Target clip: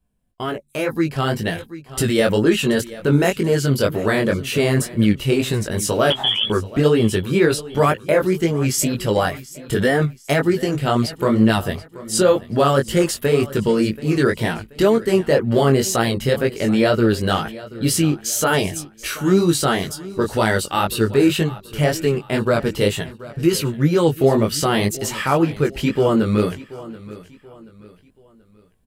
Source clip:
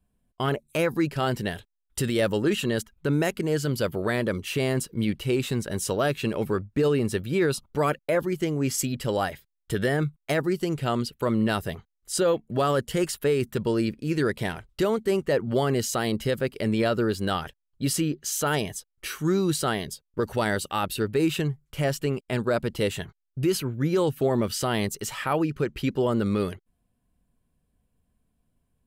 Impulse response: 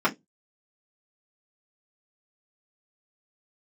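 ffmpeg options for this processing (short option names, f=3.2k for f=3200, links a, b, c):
-filter_complex "[0:a]asettb=1/sr,asplit=3[a][b][c];[a]atrim=end=6.104[d];[b]atrim=start=6.1:end=6.5,asetpts=PTS-STARTPTS,afade=t=in:d=0.004:c=qsin,afade=t=out:st=0.396:d=0.004:c=qsin,lowpass=f=3k:t=q:w=0.5098,lowpass=f=3k:t=q:w=0.6013,lowpass=f=3k:t=q:w=0.9,lowpass=f=3k:t=q:w=2.563,afreqshift=-3500[e];[c]atrim=start=6.496[f];[d][e]acrossfade=d=0.004:c1=hsin:c2=qsin[g];[g][f]acrossfade=d=0.004:c1=qsin:c2=hsin,flanger=delay=17.5:depth=4.8:speed=2,asplit=2[h][i];[i]aecho=0:1:731|1462|2193:0.126|0.0466|0.0172[j];[h][j]amix=inputs=2:normalize=0,dynaudnorm=f=750:g=3:m=7dB,volume=3.5dB"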